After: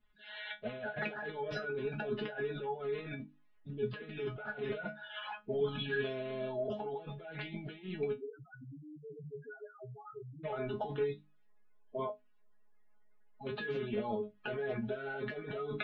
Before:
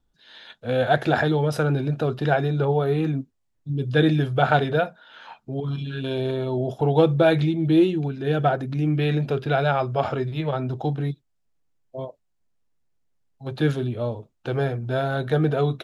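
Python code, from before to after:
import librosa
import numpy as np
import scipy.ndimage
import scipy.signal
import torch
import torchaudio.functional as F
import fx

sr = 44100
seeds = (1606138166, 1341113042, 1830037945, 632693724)

y = fx.spec_quant(x, sr, step_db=30)
y = scipy.signal.sosfilt(scipy.signal.butter(4, 2800.0, 'lowpass', fs=sr, output='sos'), y)
y = fx.tilt_shelf(y, sr, db=-5.0, hz=1300.0)
y = fx.hum_notches(y, sr, base_hz=50, count=6)
y = fx.over_compress(y, sr, threshold_db=-34.0, ratio=-1.0)
y = fx.spec_topn(y, sr, count=1, at=(8.11, 10.43), fade=0.02)
y = fx.comb_fb(y, sr, f0_hz=210.0, decay_s=0.16, harmonics='all', damping=0.0, mix_pct=100)
y = y * 10.0 ** (6.5 / 20.0)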